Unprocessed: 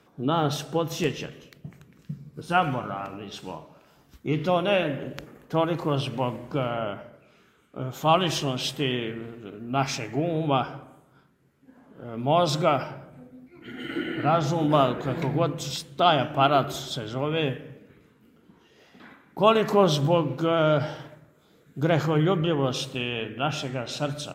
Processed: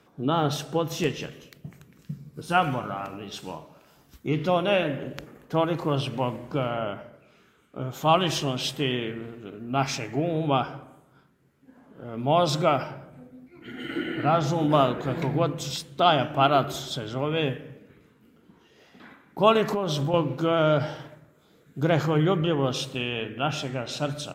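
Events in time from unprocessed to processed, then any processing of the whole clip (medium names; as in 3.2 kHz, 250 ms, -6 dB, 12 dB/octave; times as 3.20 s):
1.22–4.29 s: treble shelf 6.1 kHz +6 dB
19.65–20.14 s: compression 10:1, threshold -22 dBFS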